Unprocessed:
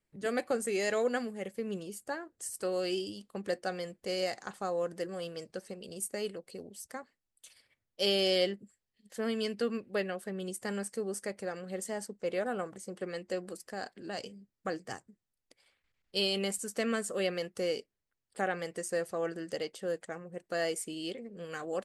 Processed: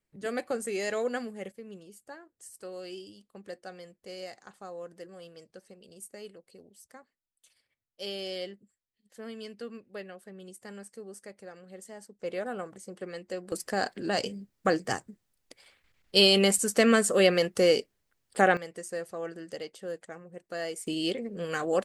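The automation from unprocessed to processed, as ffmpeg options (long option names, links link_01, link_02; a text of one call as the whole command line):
ffmpeg -i in.wav -af "asetnsamples=nb_out_samples=441:pad=0,asendcmd='1.52 volume volume -8.5dB;12.19 volume volume -1dB;13.52 volume volume 10.5dB;18.57 volume volume -2.5dB;20.87 volume volume 8.5dB',volume=-0.5dB" out.wav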